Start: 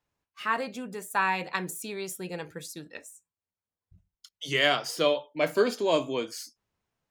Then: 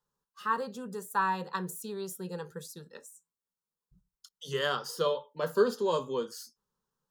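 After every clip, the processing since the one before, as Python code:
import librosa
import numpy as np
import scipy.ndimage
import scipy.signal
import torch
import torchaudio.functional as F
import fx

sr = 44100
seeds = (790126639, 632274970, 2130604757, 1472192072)

y = fx.dynamic_eq(x, sr, hz=7700.0, q=0.74, threshold_db=-49.0, ratio=4.0, max_db=-5)
y = fx.fixed_phaser(y, sr, hz=450.0, stages=8)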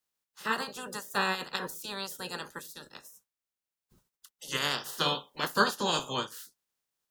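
y = fx.spec_clip(x, sr, under_db=27)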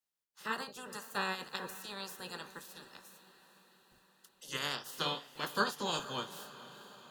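y = fx.echo_diffused(x, sr, ms=463, feedback_pct=62, wet_db=-15.5)
y = y * 10.0 ** (-6.5 / 20.0)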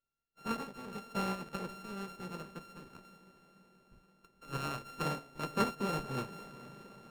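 y = np.r_[np.sort(x[:len(x) // 32 * 32].reshape(-1, 32), axis=1).ravel(), x[len(x) // 32 * 32:]]
y = fx.tilt_eq(y, sr, slope=-3.0)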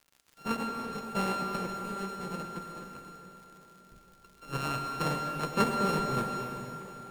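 y = fx.dmg_crackle(x, sr, seeds[0], per_s=120.0, level_db=-50.0)
y = fx.rev_plate(y, sr, seeds[1], rt60_s=2.7, hf_ratio=0.9, predelay_ms=90, drr_db=3.5)
y = y * 10.0 ** (4.0 / 20.0)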